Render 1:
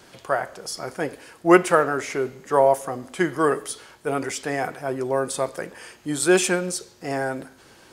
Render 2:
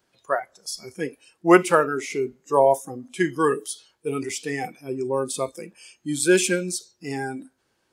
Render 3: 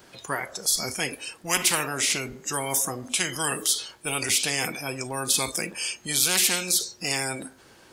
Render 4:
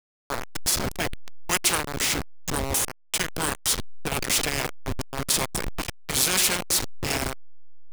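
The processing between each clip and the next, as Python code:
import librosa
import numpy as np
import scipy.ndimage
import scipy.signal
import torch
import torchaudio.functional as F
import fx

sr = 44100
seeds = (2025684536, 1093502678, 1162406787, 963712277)

y1 = fx.noise_reduce_blind(x, sr, reduce_db=20)
y2 = fx.spectral_comp(y1, sr, ratio=10.0)
y2 = y2 * 10.0 ** (-4.0 / 20.0)
y3 = fx.delta_hold(y2, sr, step_db=-20.0)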